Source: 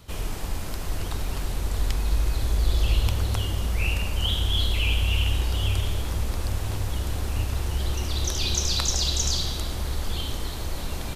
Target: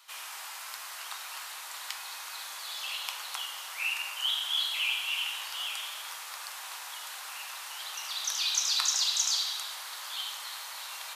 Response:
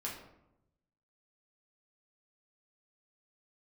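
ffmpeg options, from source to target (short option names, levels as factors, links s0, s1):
-filter_complex "[0:a]highpass=f=970:w=0.5412,highpass=f=970:w=1.3066,asplit=2[s0][s1];[1:a]atrim=start_sample=2205,asetrate=37485,aresample=44100[s2];[s1][s2]afir=irnorm=-1:irlink=0,volume=0.891[s3];[s0][s3]amix=inputs=2:normalize=0,volume=0.531"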